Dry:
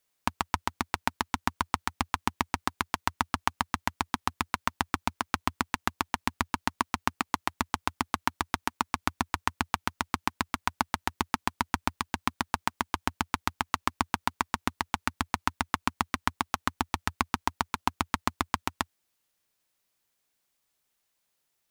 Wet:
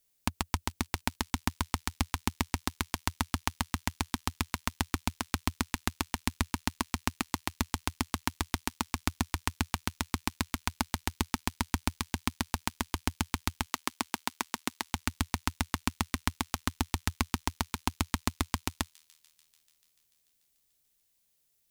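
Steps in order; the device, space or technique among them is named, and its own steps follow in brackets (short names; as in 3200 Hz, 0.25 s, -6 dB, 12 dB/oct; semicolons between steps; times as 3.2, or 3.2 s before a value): 13.66–14.93 HPF 280 Hz 12 dB/oct; smiley-face EQ (low shelf 98 Hz +9 dB; bell 1100 Hz -8 dB 1.7 oct; high shelf 6600 Hz +6 dB); thin delay 0.146 s, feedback 79%, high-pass 3400 Hz, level -23 dB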